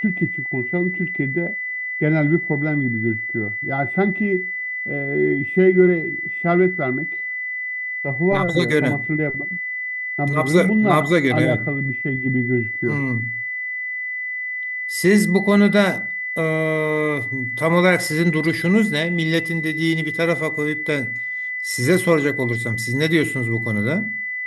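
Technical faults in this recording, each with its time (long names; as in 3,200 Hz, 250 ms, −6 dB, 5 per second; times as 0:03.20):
whistle 2,000 Hz −24 dBFS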